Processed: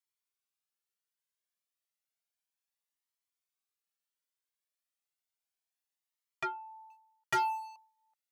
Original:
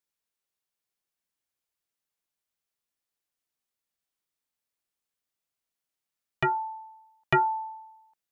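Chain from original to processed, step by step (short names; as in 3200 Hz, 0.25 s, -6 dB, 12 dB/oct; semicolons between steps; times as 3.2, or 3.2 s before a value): HPF 890 Hz 6 dB/oct; 6.9–7.76 sample leveller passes 2; soft clip -22 dBFS, distortion -13 dB; cascading flanger rising 0.32 Hz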